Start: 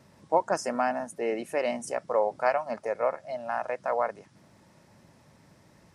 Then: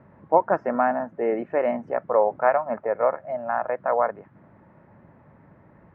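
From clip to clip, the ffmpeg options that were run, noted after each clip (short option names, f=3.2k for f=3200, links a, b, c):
-af "lowpass=f=1.8k:w=0.5412,lowpass=f=1.8k:w=1.3066,volume=5.5dB"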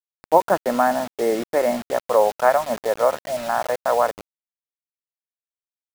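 -af "acrusher=bits=5:mix=0:aa=0.000001,volume=3dB"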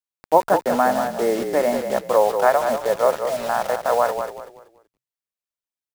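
-filter_complex "[0:a]asplit=5[a][b][c][d][e];[b]adelay=190,afreqshift=-33,volume=-7.5dB[f];[c]adelay=380,afreqshift=-66,volume=-17.7dB[g];[d]adelay=570,afreqshift=-99,volume=-27.8dB[h];[e]adelay=760,afreqshift=-132,volume=-38dB[i];[a][f][g][h][i]amix=inputs=5:normalize=0"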